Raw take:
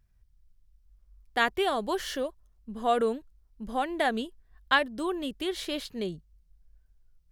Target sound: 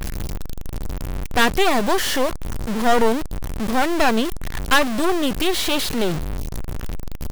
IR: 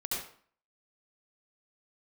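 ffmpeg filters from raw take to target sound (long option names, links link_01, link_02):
-af "aeval=exprs='val(0)+0.5*0.0668*sgn(val(0))':channel_layout=same,aeval=exprs='0.422*(cos(1*acos(clip(val(0)/0.422,-1,1)))-cos(1*PI/2))+0.0944*(cos(8*acos(clip(val(0)/0.422,-1,1)))-cos(8*PI/2))':channel_layout=same,volume=3.5dB"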